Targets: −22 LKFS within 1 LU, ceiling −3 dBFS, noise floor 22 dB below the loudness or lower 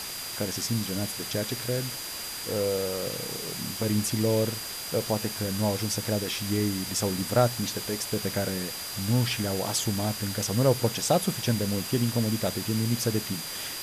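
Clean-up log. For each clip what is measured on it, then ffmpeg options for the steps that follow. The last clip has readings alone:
interfering tone 4,800 Hz; level of the tone −39 dBFS; background noise floor −36 dBFS; target noise floor −50 dBFS; integrated loudness −28.0 LKFS; sample peak −10.0 dBFS; target loudness −22.0 LKFS
→ -af "bandreject=frequency=4800:width=30"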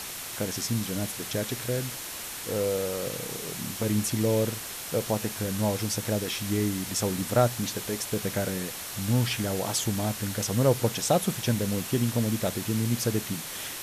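interfering tone none found; background noise floor −38 dBFS; target noise floor −51 dBFS
→ -af "afftdn=noise_reduction=13:noise_floor=-38"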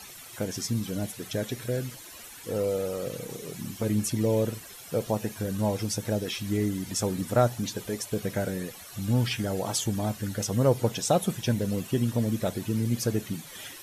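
background noise floor −46 dBFS; target noise floor −51 dBFS
→ -af "afftdn=noise_reduction=6:noise_floor=-46"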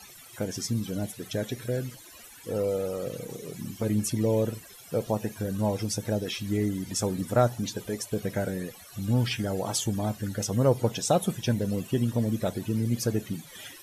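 background noise floor −49 dBFS; target noise floor −51 dBFS
→ -af "afftdn=noise_reduction=6:noise_floor=-49"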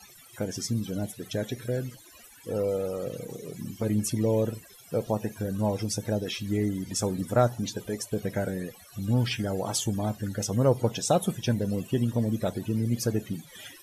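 background noise floor −52 dBFS; integrated loudness −29.0 LKFS; sample peak −10.5 dBFS; target loudness −22.0 LKFS
→ -af "volume=7dB"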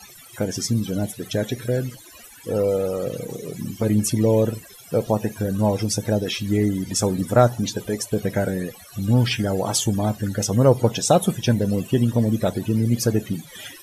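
integrated loudness −22.0 LKFS; sample peak −3.5 dBFS; background noise floor −45 dBFS

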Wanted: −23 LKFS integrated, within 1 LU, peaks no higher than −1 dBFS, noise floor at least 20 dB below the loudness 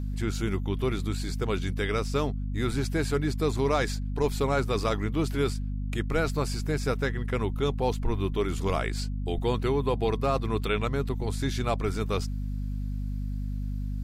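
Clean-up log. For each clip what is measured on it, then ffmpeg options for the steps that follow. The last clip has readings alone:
mains hum 50 Hz; hum harmonics up to 250 Hz; level of the hum −29 dBFS; integrated loudness −29.0 LKFS; sample peak −13.5 dBFS; target loudness −23.0 LKFS
→ -af "bandreject=frequency=50:width_type=h:width=4,bandreject=frequency=100:width_type=h:width=4,bandreject=frequency=150:width_type=h:width=4,bandreject=frequency=200:width_type=h:width=4,bandreject=frequency=250:width_type=h:width=4"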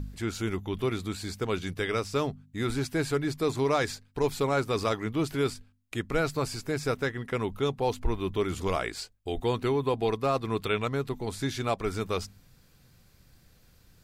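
mains hum none found; integrated loudness −30.0 LKFS; sample peak −15.0 dBFS; target loudness −23.0 LKFS
→ -af "volume=7dB"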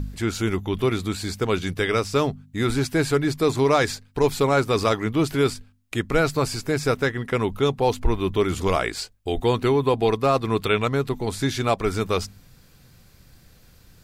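integrated loudness −23.0 LKFS; sample peak −8.0 dBFS; background noise floor −54 dBFS

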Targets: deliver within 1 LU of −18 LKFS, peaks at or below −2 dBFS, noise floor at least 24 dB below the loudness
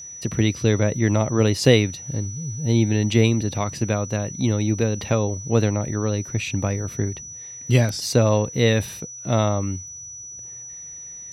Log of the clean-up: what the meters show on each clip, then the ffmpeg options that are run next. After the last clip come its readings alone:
interfering tone 5,900 Hz; level of the tone −35 dBFS; integrated loudness −22.0 LKFS; sample peak −2.0 dBFS; target loudness −18.0 LKFS
→ -af "bandreject=frequency=5900:width=30"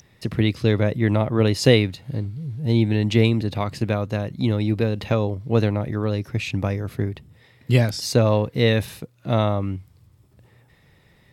interfering tone none found; integrated loudness −22.0 LKFS; sample peak −2.0 dBFS; target loudness −18.0 LKFS
→ -af "volume=4dB,alimiter=limit=-2dB:level=0:latency=1"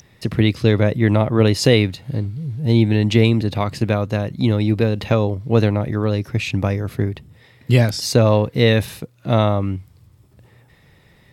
integrated loudness −18.5 LKFS; sample peak −2.0 dBFS; background noise floor −53 dBFS

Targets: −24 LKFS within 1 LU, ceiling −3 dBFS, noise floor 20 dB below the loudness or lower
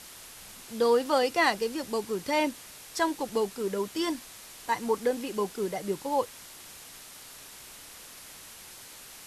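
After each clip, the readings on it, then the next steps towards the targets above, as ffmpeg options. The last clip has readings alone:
background noise floor −48 dBFS; target noise floor −49 dBFS; integrated loudness −29.0 LKFS; sample peak −11.5 dBFS; target loudness −24.0 LKFS
→ -af "afftdn=noise_reduction=6:noise_floor=-48"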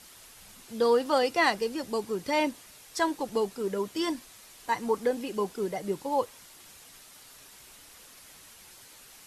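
background noise floor −52 dBFS; integrated loudness −29.0 LKFS; sample peak −11.5 dBFS; target loudness −24.0 LKFS
→ -af "volume=5dB"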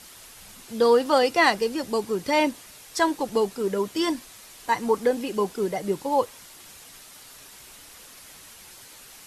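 integrated loudness −24.0 LKFS; sample peak −6.5 dBFS; background noise floor −47 dBFS

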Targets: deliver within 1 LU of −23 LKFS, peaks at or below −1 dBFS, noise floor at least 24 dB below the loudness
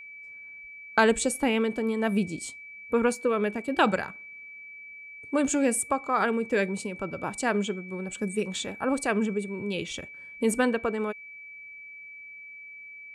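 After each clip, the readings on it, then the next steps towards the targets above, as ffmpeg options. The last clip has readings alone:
interfering tone 2,300 Hz; level of the tone −42 dBFS; integrated loudness −27.5 LKFS; sample peak −8.5 dBFS; target loudness −23.0 LKFS
→ -af "bandreject=frequency=2300:width=30"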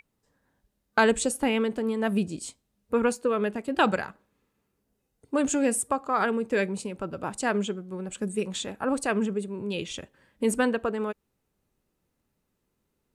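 interfering tone none found; integrated loudness −27.5 LKFS; sample peak −9.0 dBFS; target loudness −23.0 LKFS
→ -af "volume=4.5dB"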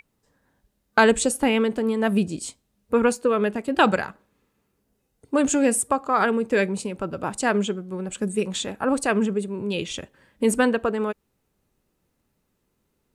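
integrated loudness −23.0 LKFS; sample peak −4.5 dBFS; background noise floor −73 dBFS

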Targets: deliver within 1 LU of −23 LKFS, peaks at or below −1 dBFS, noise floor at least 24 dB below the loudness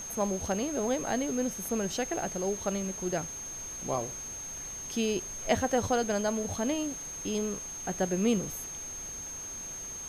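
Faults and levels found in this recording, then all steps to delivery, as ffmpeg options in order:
interfering tone 6,400 Hz; level of the tone −38 dBFS; background noise floor −40 dBFS; target noise floor −56 dBFS; integrated loudness −32.0 LKFS; sample peak −13.0 dBFS; target loudness −23.0 LKFS
→ -af "bandreject=frequency=6400:width=30"
-af "afftdn=noise_reduction=16:noise_floor=-40"
-af "volume=9dB"

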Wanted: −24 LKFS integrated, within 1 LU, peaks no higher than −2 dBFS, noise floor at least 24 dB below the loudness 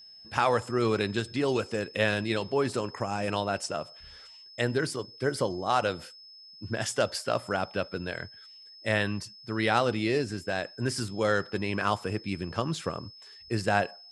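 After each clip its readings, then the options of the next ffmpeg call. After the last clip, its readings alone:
interfering tone 5,200 Hz; level of the tone −48 dBFS; integrated loudness −29.5 LKFS; sample peak −8.5 dBFS; target loudness −24.0 LKFS
→ -af "bandreject=frequency=5200:width=30"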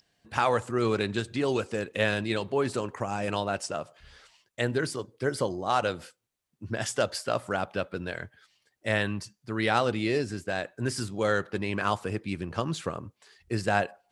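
interfering tone none found; integrated loudness −29.5 LKFS; sample peak −8.5 dBFS; target loudness −24.0 LKFS
→ -af "volume=5.5dB"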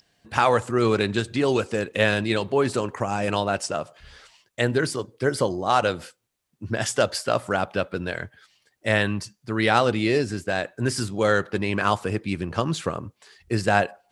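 integrated loudness −24.0 LKFS; sample peak −3.0 dBFS; background noise floor −72 dBFS

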